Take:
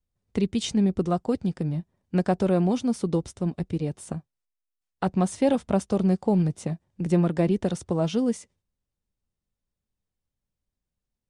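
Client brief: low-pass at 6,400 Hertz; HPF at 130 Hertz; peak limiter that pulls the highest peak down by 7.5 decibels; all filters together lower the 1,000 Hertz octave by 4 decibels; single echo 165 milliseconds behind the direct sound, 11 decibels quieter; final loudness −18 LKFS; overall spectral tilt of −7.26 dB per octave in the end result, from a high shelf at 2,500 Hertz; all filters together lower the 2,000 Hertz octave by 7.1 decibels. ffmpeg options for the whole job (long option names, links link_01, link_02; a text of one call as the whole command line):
ffmpeg -i in.wav -af "highpass=130,lowpass=6400,equalizer=frequency=1000:width_type=o:gain=-4.5,equalizer=frequency=2000:width_type=o:gain=-5.5,highshelf=frequency=2500:gain=-5,alimiter=limit=-19dB:level=0:latency=1,aecho=1:1:165:0.282,volume=12dB" out.wav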